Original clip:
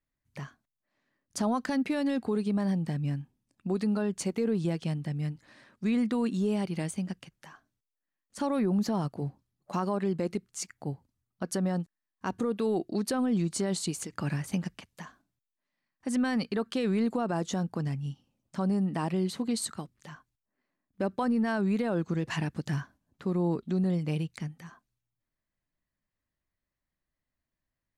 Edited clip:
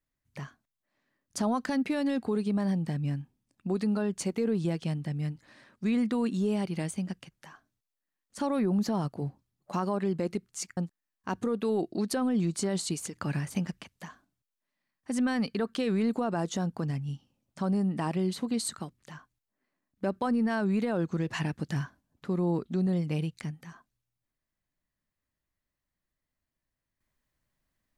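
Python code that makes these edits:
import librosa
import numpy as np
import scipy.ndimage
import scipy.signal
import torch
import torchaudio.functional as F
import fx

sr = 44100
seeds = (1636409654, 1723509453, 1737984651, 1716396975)

y = fx.edit(x, sr, fx.cut(start_s=10.77, length_s=0.97), tone=tone)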